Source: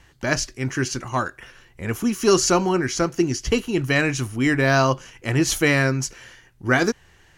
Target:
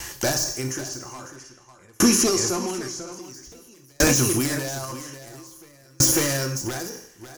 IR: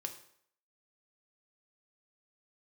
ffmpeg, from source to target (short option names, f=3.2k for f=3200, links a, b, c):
-filter_complex "[0:a]bass=f=250:g=-7,treble=f=4k:g=7,acompressor=threshold=-20dB:ratio=6,aeval=exprs='0.112*(abs(mod(val(0)/0.112+3,4)-2)-1)':c=same,aexciter=amount=2.4:drive=5:freq=5k[a];[1:a]atrim=start_sample=2205[b];[a][b]afir=irnorm=-1:irlink=0,acrossover=split=1300|4400[c][d][e];[c]acompressor=threshold=-29dB:ratio=4[f];[d]acompressor=threshold=-45dB:ratio=4[g];[e]acompressor=threshold=-32dB:ratio=4[h];[f][g][h]amix=inputs=3:normalize=0,asettb=1/sr,asplit=3[i][j][k];[i]atrim=end=0.814[l];[j]atrim=start=0.81:end=3.22,asetpts=PTS-STARTPTS,afade=t=in:d=0.004:c=qsin,afade=t=out:st=2.406:d=0.004:c=qsin,lowpass=8.8k[m];[k]atrim=start=3.216[n];[l][m]acrossfade=d=0.004:c1=hsin:c2=qsin[o];[o][n]acrossfade=d=0.004:c1=qsin:c2=hsin,aecho=1:1:548:0.562,alimiter=level_in=24.5dB:limit=-1dB:release=50:level=0:latency=1,aeval=exprs='val(0)*pow(10,-39*if(lt(mod(0.5*n/s,1),2*abs(0.5)/1000),1-mod(0.5*n/s,1)/(2*abs(0.5)/1000),(mod(0.5*n/s,1)-2*abs(0.5)/1000)/(1-2*abs(0.5)/1000))/20)':c=same,volume=-5dB"